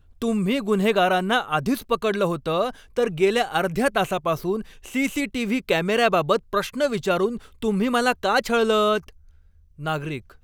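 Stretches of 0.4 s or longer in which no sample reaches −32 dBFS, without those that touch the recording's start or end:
0:09.08–0:09.80

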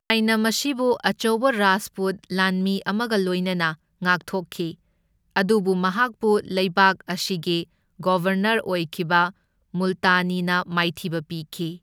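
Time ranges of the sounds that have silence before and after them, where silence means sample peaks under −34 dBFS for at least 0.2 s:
0:04.02–0:04.71
0:05.36–0:07.63
0:08.00–0:09.30

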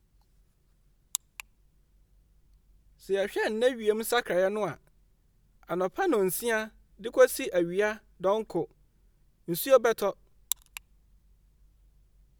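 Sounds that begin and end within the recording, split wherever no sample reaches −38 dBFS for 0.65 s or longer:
0:01.15–0:01.40
0:03.09–0:04.74
0:05.70–0:08.65
0:09.48–0:10.77

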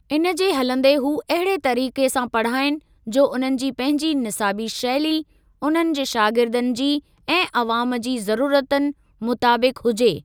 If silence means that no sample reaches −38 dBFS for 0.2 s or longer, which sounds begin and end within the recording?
0:03.07–0:05.22
0:05.62–0:06.99
0:07.28–0:08.92

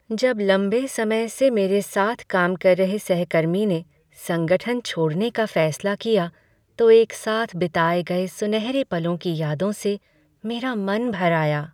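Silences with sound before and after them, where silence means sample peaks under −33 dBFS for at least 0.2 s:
0:03.82–0:04.22
0:06.29–0:06.79
0:09.96–0:10.44

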